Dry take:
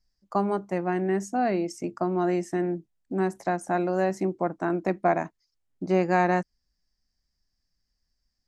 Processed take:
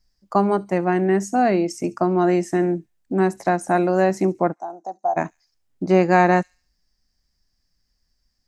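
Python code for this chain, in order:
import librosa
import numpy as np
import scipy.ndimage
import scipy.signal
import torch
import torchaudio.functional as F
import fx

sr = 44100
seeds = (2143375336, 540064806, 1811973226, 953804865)

y = fx.double_bandpass(x, sr, hz=2200.0, octaves=3.0, at=(4.52, 5.16), fade=0.02)
y = fx.echo_wet_highpass(y, sr, ms=70, feedback_pct=39, hz=4800.0, wet_db=-14.5)
y = F.gain(torch.from_numpy(y), 7.0).numpy()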